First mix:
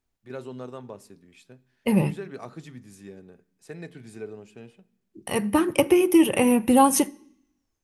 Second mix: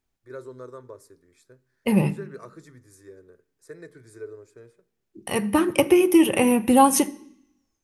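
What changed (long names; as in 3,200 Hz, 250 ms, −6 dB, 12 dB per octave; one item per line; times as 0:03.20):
first voice: add phaser with its sweep stopped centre 770 Hz, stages 6
second voice: send +6.5 dB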